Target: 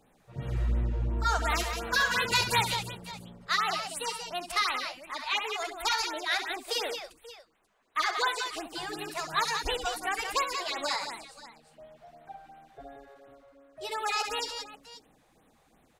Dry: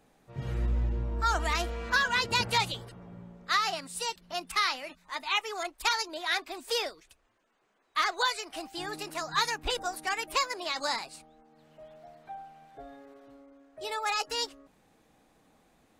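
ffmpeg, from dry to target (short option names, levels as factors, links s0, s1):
-filter_complex "[0:a]asettb=1/sr,asplit=3[s0][s1][s2];[s0]atrim=end=1.504[s3];[s1]atrim=start=1.5:end=2.73,asetpts=PTS-STARTPTS,afade=t=in:d=0.004:c=qsin,afade=t=out:st=1.226:d=0.004:c=qsin,highshelf=f=8700:g=11[s4];[s2]atrim=start=2.726[s5];[s3][s4]acrossfade=d=0.004:c1=hsin:c2=qsin[s6];[s6][s5]acrossfade=d=0.004:c1=qsin:c2=hsin,aecho=1:1:67|179|536:0.355|0.447|0.141,afftfilt=real='re*(1-between(b*sr/1024,230*pow(6200/230,0.5+0.5*sin(2*PI*2.8*pts/sr))/1.41,230*pow(6200/230,0.5+0.5*sin(2*PI*2.8*pts/sr))*1.41))':imag='im*(1-between(b*sr/1024,230*pow(6200/230,0.5+0.5*sin(2*PI*2.8*pts/sr))/1.41,230*pow(6200/230,0.5+0.5*sin(2*PI*2.8*pts/sr))*1.41))':win_size=1024:overlap=0.75"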